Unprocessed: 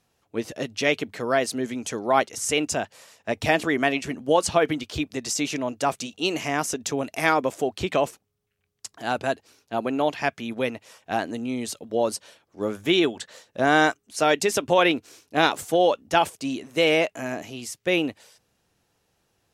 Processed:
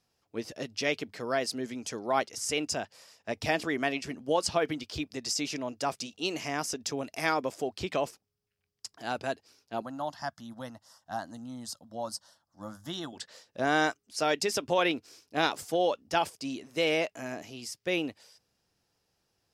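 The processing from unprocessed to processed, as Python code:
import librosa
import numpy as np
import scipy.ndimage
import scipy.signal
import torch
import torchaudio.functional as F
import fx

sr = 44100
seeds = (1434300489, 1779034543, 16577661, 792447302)

y = fx.fixed_phaser(x, sr, hz=1000.0, stages=4, at=(9.82, 13.13))
y = fx.peak_eq(y, sr, hz=5000.0, db=9.5, octaves=0.32)
y = y * 10.0 ** (-7.5 / 20.0)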